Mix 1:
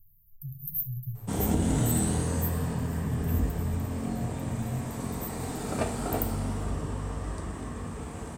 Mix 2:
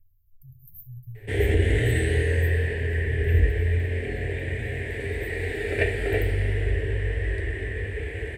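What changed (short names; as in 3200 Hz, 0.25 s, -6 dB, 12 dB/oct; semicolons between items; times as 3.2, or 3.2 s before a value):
background +8.5 dB; master: add EQ curve 110 Hz 0 dB, 170 Hz -22 dB, 260 Hz -16 dB, 400 Hz +4 dB, 1200 Hz -28 dB, 1800 Hz +12 dB, 3200 Hz -1 dB, 6100 Hz -23 dB, 10000 Hz -15 dB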